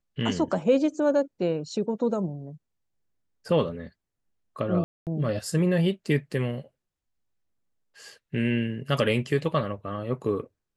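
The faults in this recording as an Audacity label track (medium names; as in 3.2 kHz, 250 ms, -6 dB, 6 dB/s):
4.840000	5.070000	dropout 228 ms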